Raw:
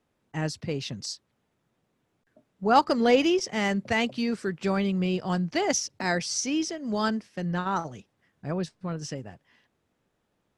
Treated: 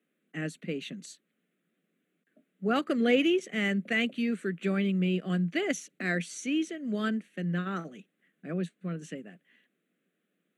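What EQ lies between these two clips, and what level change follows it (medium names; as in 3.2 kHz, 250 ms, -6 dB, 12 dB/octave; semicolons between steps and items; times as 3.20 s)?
Chebyshev high-pass 170 Hz, order 5; static phaser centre 2.2 kHz, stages 4; 0.0 dB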